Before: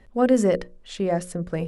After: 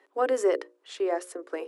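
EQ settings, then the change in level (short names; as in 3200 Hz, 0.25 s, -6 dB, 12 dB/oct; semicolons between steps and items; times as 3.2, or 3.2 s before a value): rippled Chebyshev high-pass 280 Hz, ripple 6 dB; +1.0 dB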